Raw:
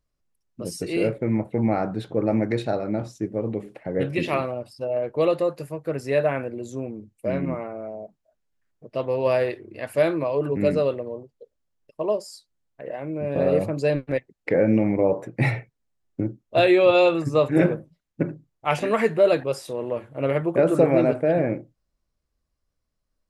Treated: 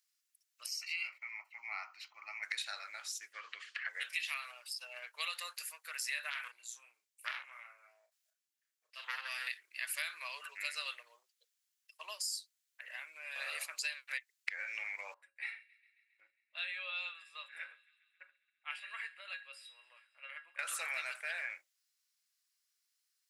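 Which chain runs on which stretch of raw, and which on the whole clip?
0.66–2.43 bell 8000 Hz -13.5 dB 1.1 oct + fixed phaser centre 2400 Hz, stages 8
3.33–3.89 speaker cabinet 240–6300 Hz, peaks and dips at 280 Hz +9 dB, 810 Hz -8 dB, 1200 Hz +10 dB, 1700 Hz +10 dB, 3000 Hz +8 dB, 4500 Hz +6 dB + three-band squash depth 70%
6.3–9.47 chopper 1.1 Hz, depth 60%, duty 20% + doubler 34 ms -5.5 dB + core saturation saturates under 1300 Hz
15.14–20.59 running mean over 7 samples + resonator 550 Hz, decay 0.28 s, harmonics odd, mix 80% + thin delay 0.135 s, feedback 71%, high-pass 1900 Hz, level -22 dB
whole clip: HPF 1500 Hz 24 dB/oct; high shelf 2700 Hz +11.5 dB; compressor 10:1, threshold -33 dBFS; gain -1.5 dB

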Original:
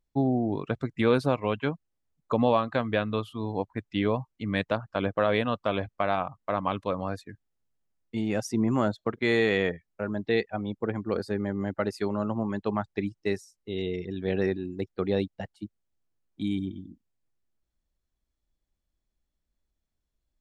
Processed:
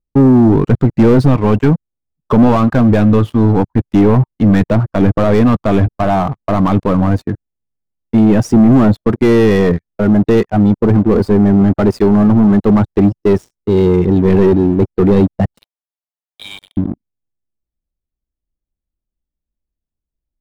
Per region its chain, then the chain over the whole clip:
15.57–16.77 steep high-pass 640 Hz 72 dB/oct + high shelf 4100 Hz +11.5 dB
whole clip: dynamic EQ 540 Hz, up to -8 dB, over -42 dBFS, Q 3; sample leveller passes 5; tilt shelf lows +9.5 dB, about 1100 Hz

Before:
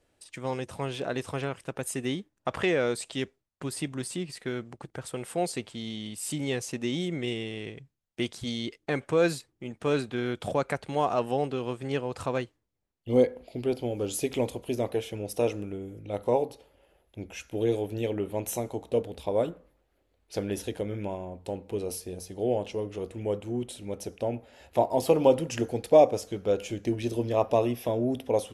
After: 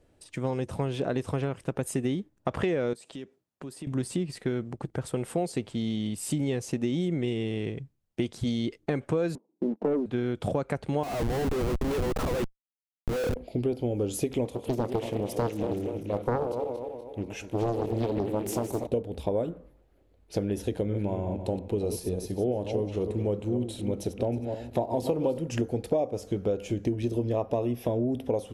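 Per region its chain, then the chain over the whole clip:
2.93–3.87 HPF 170 Hz + notch 2100 Hz, Q 26 + compressor 4:1, threshold -45 dBFS
9.35–10.06 Chebyshev band-pass 190–990 Hz, order 4 + sample leveller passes 2
11.03–13.36 HPF 510 Hz + Schmitt trigger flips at -42 dBFS
14.45–18.87 regenerating reverse delay 0.122 s, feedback 68%, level -9 dB + low shelf 150 Hz -9.5 dB + Doppler distortion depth 0.73 ms
20.73–25.38 regenerating reverse delay 0.159 s, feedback 41%, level -9.5 dB + bell 4000 Hz +6 dB 0.21 oct
whole clip: tilt shelf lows +5.5 dB, about 670 Hz; compressor 6:1, threshold -29 dBFS; gain +4.5 dB

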